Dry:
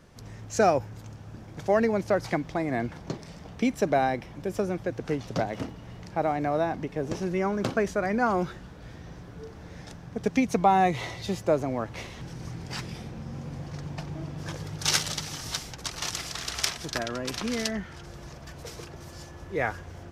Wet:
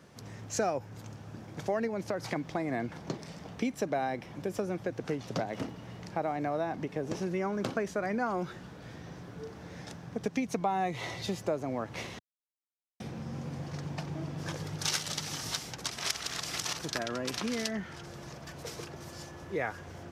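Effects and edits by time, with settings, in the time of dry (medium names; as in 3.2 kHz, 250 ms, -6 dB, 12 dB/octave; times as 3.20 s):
1.87–2.36 s: compression, threshold -24 dBFS
12.19–13.00 s: mute
15.92–16.83 s: reverse
whole clip: high-pass 110 Hz 12 dB/octave; compression 2.5:1, threshold -31 dBFS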